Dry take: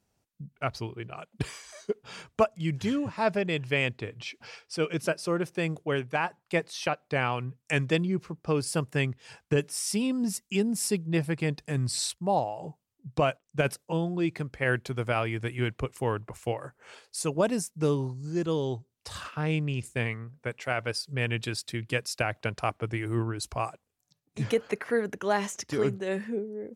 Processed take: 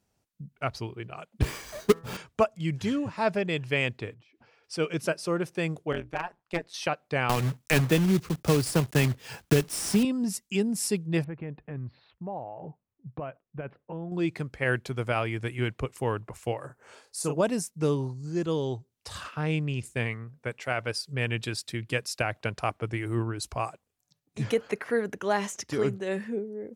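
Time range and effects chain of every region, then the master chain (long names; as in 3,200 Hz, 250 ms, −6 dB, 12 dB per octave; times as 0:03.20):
0:01.42–0:02.17: each half-wave held at its own peak + low-shelf EQ 470 Hz +11.5 dB + hum removal 165.2 Hz, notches 11
0:04.14–0:04.64: parametric band 320 Hz +6.5 dB 0.2 octaves + downward compressor 10 to 1, threshold −52 dBFS + low-pass filter 1,200 Hz 6 dB per octave
0:05.92–0:06.74: high-shelf EQ 8,100 Hz −11 dB + amplitude modulation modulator 180 Hz, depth 90% + hard clipping −18 dBFS
0:07.29–0:10.05: one scale factor per block 3 bits + low-shelf EQ 400 Hz +6 dB + multiband upward and downward compressor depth 70%
0:11.24–0:14.12: downward compressor 2.5 to 1, threshold −36 dBFS + Gaussian smoothing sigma 4 samples
0:16.66–0:17.36: parametric band 2,900 Hz −7 dB 1.4 octaves + double-tracking delay 34 ms −5.5 dB
whole clip: no processing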